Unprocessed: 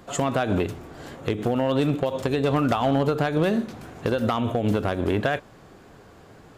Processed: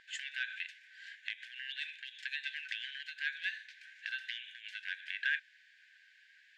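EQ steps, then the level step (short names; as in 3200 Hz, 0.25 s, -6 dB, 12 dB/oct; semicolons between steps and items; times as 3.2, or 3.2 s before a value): brick-wall FIR high-pass 1500 Hz; LPF 3100 Hz 12 dB/oct; -1.0 dB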